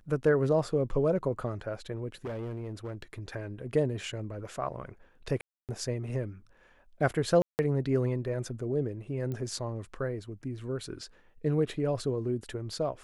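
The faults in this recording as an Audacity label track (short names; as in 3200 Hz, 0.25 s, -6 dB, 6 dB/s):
2.250000	3.020000	clipped -33 dBFS
5.410000	5.690000	gap 0.278 s
7.420000	7.590000	gap 0.169 s
9.320000	9.320000	pop -25 dBFS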